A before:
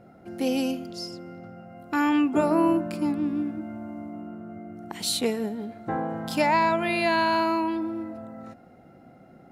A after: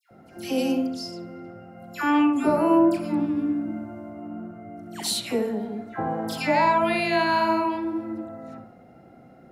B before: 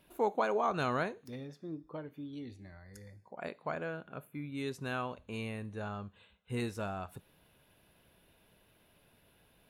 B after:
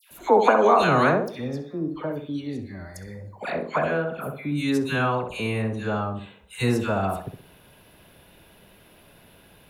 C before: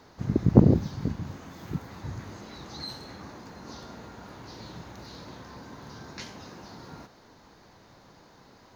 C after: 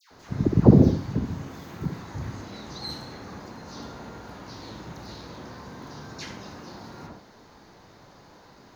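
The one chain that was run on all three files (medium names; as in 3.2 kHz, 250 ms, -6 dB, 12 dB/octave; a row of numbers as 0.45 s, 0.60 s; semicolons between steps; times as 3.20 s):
phase dispersion lows, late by 111 ms, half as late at 1.5 kHz; tape echo 64 ms, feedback 41%, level -5 dB, low-pass 1.7 kHz; normalise loudness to -24 LUFS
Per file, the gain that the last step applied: +0.5 dB, +13.0 dB, +2.5 dB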